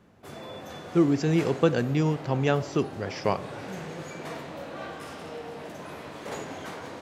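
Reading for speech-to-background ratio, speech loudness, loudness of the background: 13.5 dB, −26.0 LKFS, −39.5 LKFS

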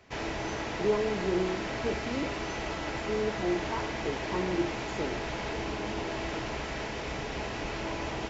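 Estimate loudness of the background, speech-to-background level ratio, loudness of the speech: −34.5 LKFS, 1.0 dB, −33.5 LKFS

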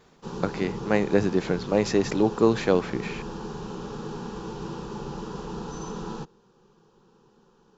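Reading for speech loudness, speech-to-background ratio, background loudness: −25.0 LKFS, 11.0 dB, −36.0 LKFS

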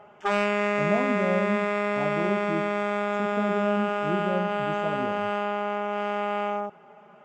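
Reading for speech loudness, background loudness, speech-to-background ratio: −32.0 LKFS, −27.0 LKFS, −5.0 dB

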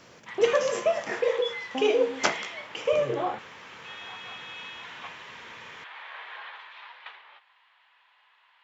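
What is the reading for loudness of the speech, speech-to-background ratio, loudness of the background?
−27.0 LKFS, 13.5 dB, −40.5 LKFS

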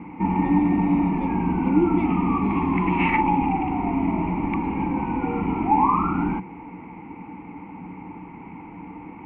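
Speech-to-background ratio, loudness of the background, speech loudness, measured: −3.5 dB, −23.0 LKFS, −26.5 LKFS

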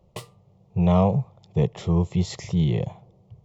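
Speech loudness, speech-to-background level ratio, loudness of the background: −24.0 LKFS, 19.5 dB, −43.5 LKFS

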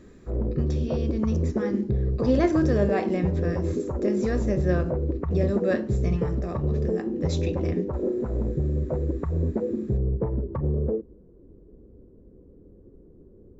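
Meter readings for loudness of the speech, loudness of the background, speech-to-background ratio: −29.0 LKFS, −27.5 LKFS, −1.5 dB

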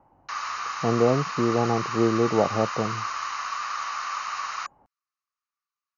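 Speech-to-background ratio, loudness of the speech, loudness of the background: 5.5 dB, −25.0 LKFS, −30.5 LKFS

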